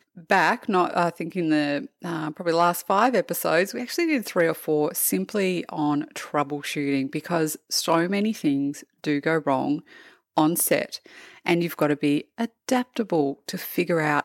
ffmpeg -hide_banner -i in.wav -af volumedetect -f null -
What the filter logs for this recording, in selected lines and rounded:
mean_volume: -24.3 dB
max_volume: -4.7 dB